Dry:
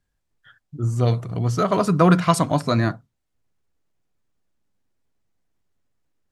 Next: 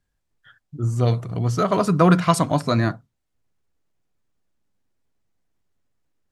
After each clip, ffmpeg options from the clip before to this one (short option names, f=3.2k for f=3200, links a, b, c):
-af anull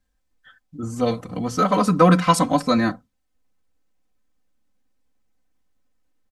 -af "aecho=1:1:3.9:0.99,volume=-1dB"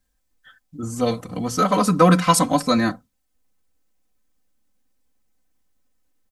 -af "highshelf=f=6.2k:g=9.5"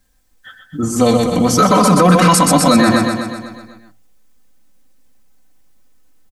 -filter_complex "[0:a]bandreject=f=57.27:t=h:w=4,bandreject=f=114.54:t=h:w=4,asplit=2[a][b];[b]aecho=0:1:125|250|375|500|625|750|875|1000:0.473|0.284|0.17|0.102|0.0613|0.0368|0.0221|0.0132[c];[a][c]amix=inputs=2:normalize=0,alimiter=level_in=12.5dB:limit=-1dB:release=50:level=0:latency=1,volume=-1dB"